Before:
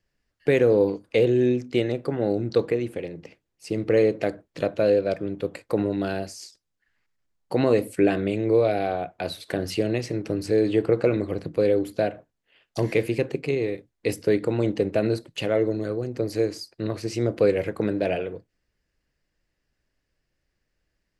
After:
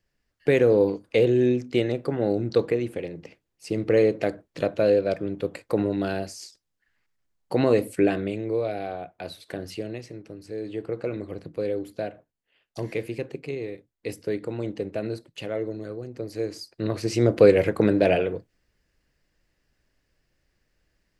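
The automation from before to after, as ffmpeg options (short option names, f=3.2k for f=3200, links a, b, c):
-af "volume=20dB,afade=t=out:st=7.93:d=0.56:silence=0.473151,afade=t=out:st=9.53:d=0.85:silence=0.375837,afade=t=in:st=10.38:d=0.94:silence=0.398107,afade=t=in:st=16.35:d=1.01:silence=0.251189"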